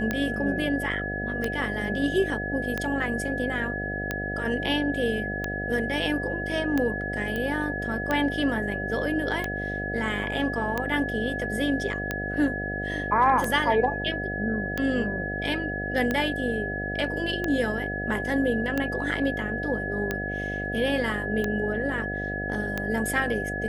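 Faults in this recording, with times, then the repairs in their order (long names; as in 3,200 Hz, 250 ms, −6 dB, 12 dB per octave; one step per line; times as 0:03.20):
mains buzz 50 Hz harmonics 15 −33 dBFS
scratch tick 45 rpm −13 dBFS
whistle 1,700 Hz −31 dBFS
0:07.36: click −18 dBFS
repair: click removal
hum removal 50 Hz, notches 15
notch filter 1,700 Hz, Q 30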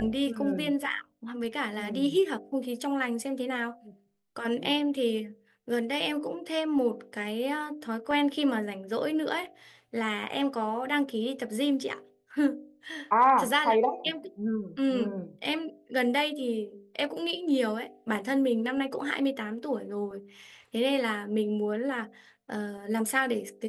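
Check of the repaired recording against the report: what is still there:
none of them is left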